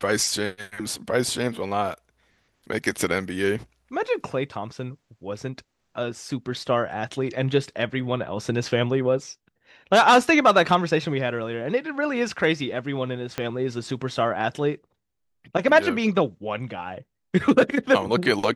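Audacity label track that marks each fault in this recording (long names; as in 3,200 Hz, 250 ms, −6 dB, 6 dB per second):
13.380000	13.380000	click −12 dBFS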